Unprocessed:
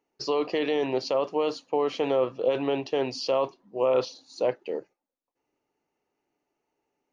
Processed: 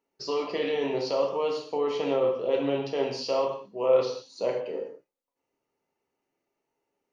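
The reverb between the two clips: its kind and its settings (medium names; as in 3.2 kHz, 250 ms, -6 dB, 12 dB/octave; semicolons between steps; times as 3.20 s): gated-style reverb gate 230 ms falling, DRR -0.5 dB; trim -4.5 dB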